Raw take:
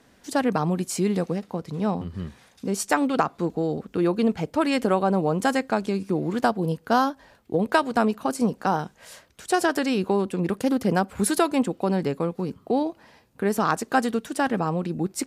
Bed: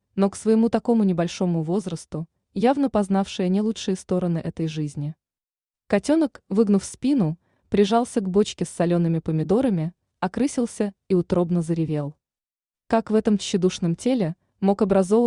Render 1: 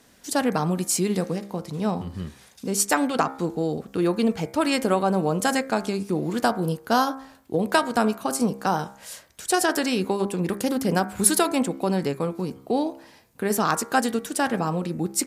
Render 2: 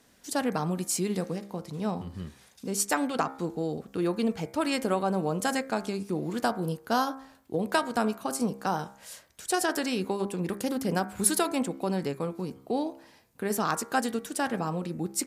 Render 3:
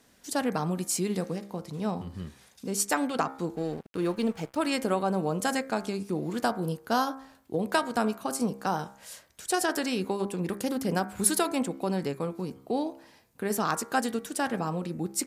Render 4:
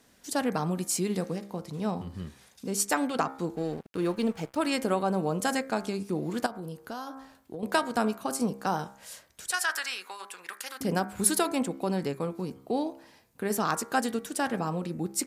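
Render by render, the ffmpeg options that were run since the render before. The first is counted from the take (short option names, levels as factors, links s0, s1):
-af "highshelf=f=4700:g=10,bandreject=f=66.96:t=h:w=4,bandreject=f=133.92:t=h:w=4,bandreject=f=200.88:t=h:w=4,bandreject=f=267.84:t=h:w=4,bandreject=f=334.8:t=h:w=4,bandreject=f=401.76:t=h:w=4,bandreject=f=468.72:t=h:w=4,bandreject=f=535.68:t=h:w=4,bandreject=f=602.64:t=h:w=4,bandreject=f=669.6:t=h:w=4,bandreject=f=736.56:t=h:w=4,bandreject=f=803.52:t=h:w=4,bandreject=f=870.48:t=h:w=4,bandreject=f=937.44:t=h:w=4,bandreject=f=1004.4:t=h:w=4,bandreject=f=1071.36:t=h:w=4,bandreject=f=1138.32:t=h:w=4,bandreject=f=1205.28:t=h:w=4,bandreject=f=1272.24:t=h:w=4,bandreject=f=1339.2:t=h:w=4,bandreject=f=1406.16:t=h:w=4,bandreject=f=1473.12:t=h:w=4,bandreject=f=1540.08:t=h:w=4,bandreject=f=1607.04:t=h:w=4,bandreject=f=1674:t=h:w=4,bandreject=f=1740.96:t=h:w=4,bandreject=f=1807.92:t=h:w=4,bandreject=f=1874.88:t=h:w=4,bandreject=f=1941.84:t=h:w=4,bandreject=f=2008.8:t=h:w=4,bandreject=f=2075.76:t=h:w=4,bandreject=f=2142.72:t=h:w=4,bandreject=f=2209.68:t=h:w=4,bandreject=f=2276.64:t=h:w=4,bandreject=f=2343.6:t=h:w=4,bandreject=f=2410.56:t=h:w=4"
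-af "volume=0.531"
-filter_complex "[0:a]asettb=1/sr,asplit=3[s0][s1][s2];[s0]atrim=end=3.564[s3];[s1]atrim=start=3.56:end=4.56,asetpts=PTS-STARTPTS,afade=t=in:d=0.004:c=qsin,afade=t=out:st=0.996:d=0.004:c=qsin,aeval=exprs='sgn(val(0))*max(abs(val(0))-0.00501,0)':c=same[s4];[s2]atrim=start=4.556[s5];[s3][s4]acrossfade=d=0.004:c1=hsin:c2=qsin[s6];[s6][s5]acrossfade=d=0.004:c1=qsin:c2=hsin"
-filter_complex "[0:a]asettb=1/sr,asplit=3[s0][s1][s2];[s0]atrim=end=6.464[s3];[s1]atrim=start=6.46:end=7.63,asetpts=PTS-STARTPTS,afade=t=in:d=0.004:c=qsin,afade=t=out:st=1.166:d=0.004:c=qsin,acompressor=threshold=0.0141:ratio=3:attack=3.2:release=140:knee=1:detection=peak[s4];[s2]atrim=start=7.626[s5];[s3][s4]acrossfade=d=0.004:c1=hsin:c2=qsin[s6];[s6][s5]acrossfade=d=0.004:c1=qsin:c2=hsin,asettb=1/sr,asplit=3[s7][s8][s9];[s7]atrim=end=9.514[s10];[s8]atrim=start=9.51:end=10.81,asetpts=PTS-STARTPTS,afade=t=in:d=0.004:c=qsin,afade=t=out:st=1.296:d=0.004:c=qsin,highpass=f=1400:t=q:w=1.6[s11];[s9]atrim=start=10.806[s12];[s10][s11]acrossfade=d=0.004:c1=hsin:c2=qsin[s13];[s13][s12]acrossfade=d=0.004:c1=qsin:c2=hsin"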